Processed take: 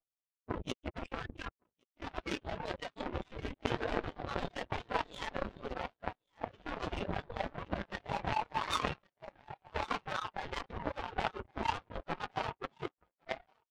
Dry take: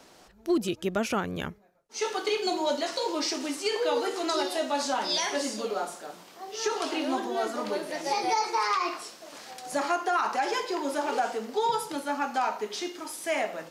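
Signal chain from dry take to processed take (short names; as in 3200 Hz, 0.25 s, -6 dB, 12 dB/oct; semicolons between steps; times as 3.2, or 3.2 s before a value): ending faded out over 2.45 s; low-pass opened by the level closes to 1600 Hz, open at -24 dBFS; reverb removal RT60 1.3 s; low shelf 120 Hz -12 dB; reverse; compressor 6:1, threshold -39 dBFS, peak gain reduction 15.5 dB; reverse; sample leveller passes 1; LPC vocoder at 8 kHz whisper; wavefolder -34.5 dBFS; formant-preserving pitch shift +10 st; thinning echo 1.113 s, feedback 40%, high-pass 190 Hz, level -7 dB; power-law curve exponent 3; spectral expander 1.5:1; gain +16.5 dB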